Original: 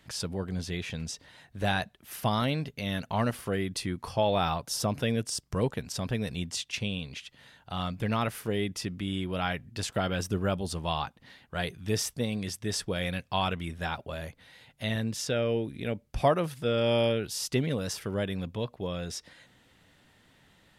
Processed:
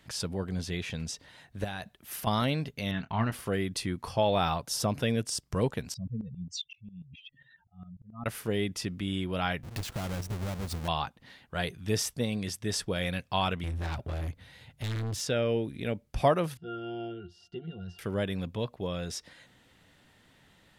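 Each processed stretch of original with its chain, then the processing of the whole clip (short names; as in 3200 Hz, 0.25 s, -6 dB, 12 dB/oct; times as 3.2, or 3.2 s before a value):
1.64–2.27 high shelf 10000 Hz +5 dB + compressor, threshold -33 dBFS
2.91–3.32 LPF 2800 Hz + bell 530 Hz -13 dB 0.53 oct + doubler 27 ms -11 dB
5.94–8.26 spectral contrast raised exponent 3.3 + auto swell 0.515 s + tremolo saw up 7.4 Hz, depth 85%
9.63–10.88 half-waves squared off + low shelf 140 Hz +7.5 dB + compressor, threshold -32 dBFS
13.63–15.21 bell 82 Hz +13.5 dB 1.8 oct + hard clip -31 dBFS
16.57–17.99 bell 4700 Hz +9.5 dB 1.2 oct + octave resonator F, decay 0.14 s
whole clip: dry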